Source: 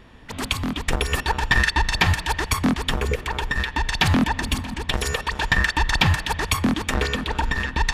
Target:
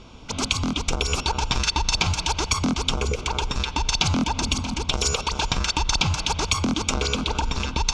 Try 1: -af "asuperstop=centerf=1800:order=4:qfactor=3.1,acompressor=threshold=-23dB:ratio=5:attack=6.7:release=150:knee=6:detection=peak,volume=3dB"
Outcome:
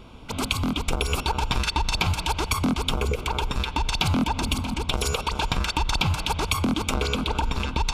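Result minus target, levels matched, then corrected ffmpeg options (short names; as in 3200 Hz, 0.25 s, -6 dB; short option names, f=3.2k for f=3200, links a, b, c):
8000 Hz band -5.0 dB
-af "asuperstop=centerf=1800:order=4:qfactor=3.1,acompressor=threshold=-23dB:ratio=5:attack=6.7:release=150:knee=6:detection=peak,lowpass=f=6.2k:t=q:w=3.3,volume=3dB"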